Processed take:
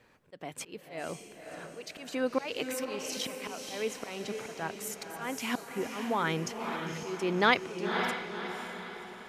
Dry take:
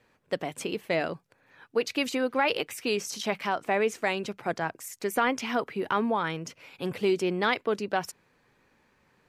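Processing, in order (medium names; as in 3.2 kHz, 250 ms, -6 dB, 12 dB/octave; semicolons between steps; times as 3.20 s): slow attack 468 ms; echo that smears into a reverb 536 ms, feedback 49%, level -5.5 dB; trim +2.5 dB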